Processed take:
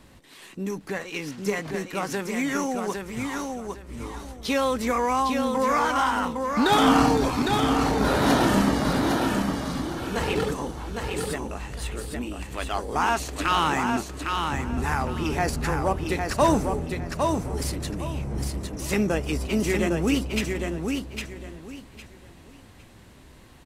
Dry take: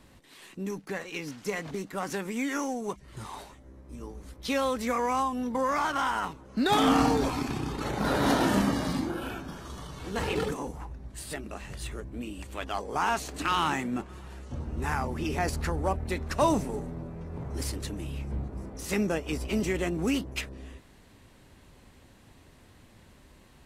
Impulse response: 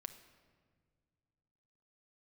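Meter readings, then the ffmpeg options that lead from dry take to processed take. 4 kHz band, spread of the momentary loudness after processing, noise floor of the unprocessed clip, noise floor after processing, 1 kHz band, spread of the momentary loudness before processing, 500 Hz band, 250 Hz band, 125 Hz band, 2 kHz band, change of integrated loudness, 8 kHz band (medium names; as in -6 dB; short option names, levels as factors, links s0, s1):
+5.5 dB, 12 LU, -56 dBFS, -49 dBFS, +5.5 dB, 16 LU, +5.5 dB, +5.5 dB, +5.0 dB, +5.5 dB, +5.0 dB, +5.5 dB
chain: -af "aecho=1:1:807|1614|2421:0.596|0.143|0.0343,volume=1.58"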